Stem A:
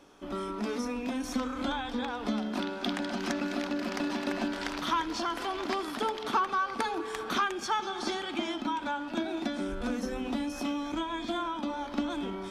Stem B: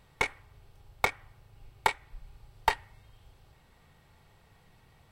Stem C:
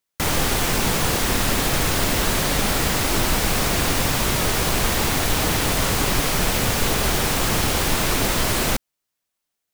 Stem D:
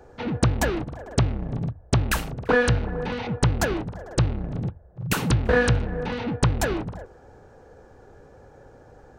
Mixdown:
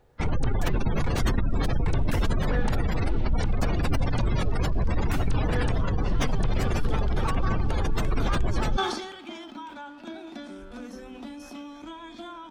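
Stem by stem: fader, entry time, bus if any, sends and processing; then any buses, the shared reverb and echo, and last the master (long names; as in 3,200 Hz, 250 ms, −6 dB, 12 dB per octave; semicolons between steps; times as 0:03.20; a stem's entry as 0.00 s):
0:05.96 −18 dB → 0:06.57 −8 dB, 0.90 s, no bus, no send, no processing
−10.0 dB, 0.00 s, bus A, no send, low-pass filter 8,200 Hz
−3.0 dB, 0.00 s, bus A, no send, gate on every frequency bin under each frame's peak −15 dB strong
−14.5 dB, 0.00 s, no bus, no send, no processing
bus A: 0.0 dB, low-shelf EQ 130 Hz +11.5 dB; brickwall limiter −17.5 dBFS, peak gain reduction 12 dB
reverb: not used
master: level that may fall only so fast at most 54 dB per second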